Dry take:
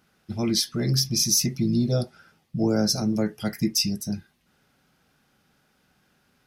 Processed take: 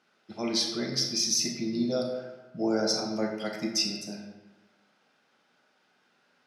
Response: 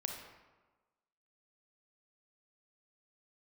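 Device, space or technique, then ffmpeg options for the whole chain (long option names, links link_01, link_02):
supermarket ceiling speaker: -filter_complex "[0:a]highpass=340,lowpass=5700[link_01];[1:a]atrim=start_sample=2205[link_02];[link_01][link_02]afir=irnorm=-1:irlink=0"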